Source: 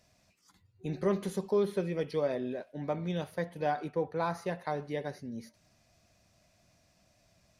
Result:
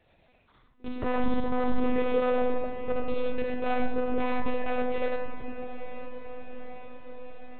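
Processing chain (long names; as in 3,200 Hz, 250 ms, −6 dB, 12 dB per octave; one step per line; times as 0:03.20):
wavefolder on the positive side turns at −28.5 dBFS
0:02.44–0:04.66: parametric band 1,400 Hz −4.5 dB 2.8 octaves
comb and all-pass reverb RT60 0.95 s, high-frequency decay 0.45×, pre-delay 20 ms, DRR −2.5 dB
one-pitch LPC vocoder at 8 kHz 250 Hz
feedback delay with all-pass diffusion 918 ms, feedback 64%, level −12 dB
brickwall limiter −18.5 dBFS, peak gain reduction 7.5 dB
level +2.5 dB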